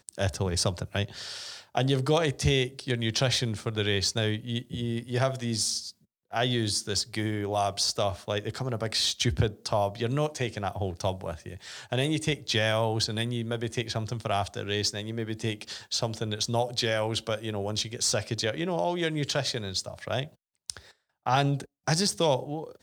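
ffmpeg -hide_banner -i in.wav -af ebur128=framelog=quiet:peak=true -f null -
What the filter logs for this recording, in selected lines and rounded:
Integrated loudness:
  I:         -28.7 LUFS
  Threshold: -38.9 LUFS
Loudness range:
  LRA:         2.7 LU
  Threshold: -49.0 LUFS
  LRA low:   -30.2 LUFS
  LRA high:  -27.5 LUFS
True peak:
  Peak:       -9.0 dBFS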